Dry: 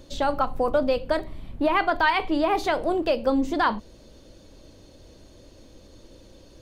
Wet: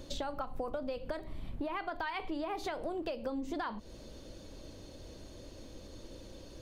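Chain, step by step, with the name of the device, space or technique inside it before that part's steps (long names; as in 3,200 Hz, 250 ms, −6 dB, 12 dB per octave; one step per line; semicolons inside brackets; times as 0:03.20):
serial compression, leveller first (downward compressor 2.5 to 1, threshold −26 dBFS, peak gain reduction 7 dB; downward compressor 4 to 1, threshold −36 dBFS, peak gain reduction 11.5 dB)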